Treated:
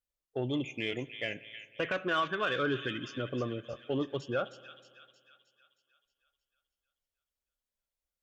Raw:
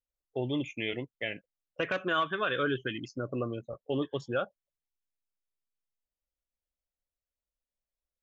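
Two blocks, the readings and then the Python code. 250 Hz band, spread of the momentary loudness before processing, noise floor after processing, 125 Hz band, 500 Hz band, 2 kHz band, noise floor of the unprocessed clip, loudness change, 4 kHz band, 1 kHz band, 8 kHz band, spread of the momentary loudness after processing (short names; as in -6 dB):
-1.0 dB, 10 LU, under -85 dBFS, -0.5 dB, -1.0 dB, -1.0 dB, under -85 dBFS, -1.0 dB, 0.0 dB, -1.5 dB, n/a, 11 LU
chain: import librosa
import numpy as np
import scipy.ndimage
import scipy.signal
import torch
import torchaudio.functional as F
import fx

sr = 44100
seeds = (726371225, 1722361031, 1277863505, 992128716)

y = fx.echo_wet_highpass(x, sr, ms=313, feedback_pct=54, hz=2800.0, wet_db=-5.5)
y = fx.cheby_harmonics(y, sr, harmonics=(5,), levels_db=(-27,), full_scale_db=-17.0)
y = fx.rev_spring(y, sr, rt60_s=2.0, pass_ms=(56,), chirp_ms=30, drr_db=19.0)
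y = F.gain(torch.from_numpy(y), -2.0).numpy()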